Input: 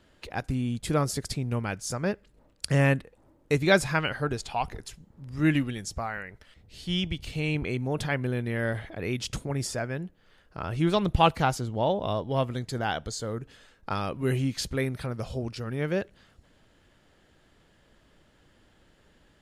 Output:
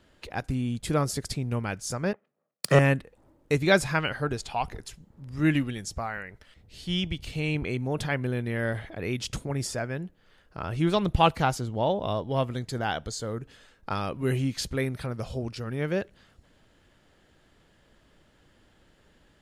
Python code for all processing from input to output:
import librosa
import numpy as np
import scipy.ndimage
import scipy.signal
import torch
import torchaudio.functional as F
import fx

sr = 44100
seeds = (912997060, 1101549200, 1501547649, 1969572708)

y = fx.chain(x, sr, fx.lower_of_two(delay_ms=1.6),
    fx.highpass(hz=160.0, slope=24),
    fx.band_widen(depth_pct=100), at=(2.13, 2.79))